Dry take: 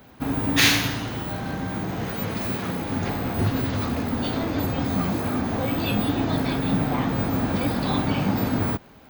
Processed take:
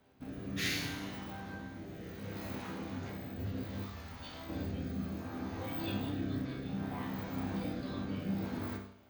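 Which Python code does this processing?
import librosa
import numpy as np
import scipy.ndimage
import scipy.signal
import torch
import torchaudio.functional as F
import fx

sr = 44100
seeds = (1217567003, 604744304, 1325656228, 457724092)

y = fx.peak_eq(x, sr, hz=310.0, db=-13.5, octaves=2.8, at=(3.82, 4.49))
y = fx.resonator_bank(y, sr, root=36, chord='major', decay_s=0.63)
y = fx.rotary(y, sr, hz=0.65)
y = y * 10.0 ** (2.0 / 20.0)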